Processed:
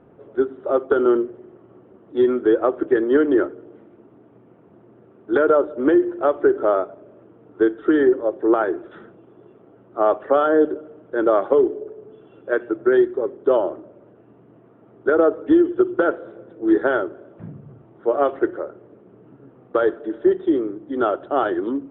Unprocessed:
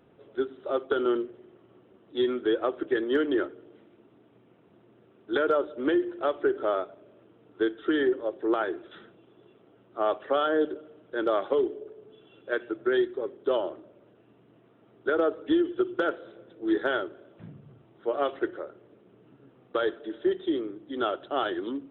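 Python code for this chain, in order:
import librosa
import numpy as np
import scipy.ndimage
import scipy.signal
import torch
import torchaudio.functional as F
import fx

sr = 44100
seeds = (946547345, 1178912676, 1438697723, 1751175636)

y = scipy.signal.sosfilt(scipy.signal.butter(2, 1400.0, 'lowpass', fs=sr, output='sos'), x)
y = y * 10.0 ** (9.0 / 20.0)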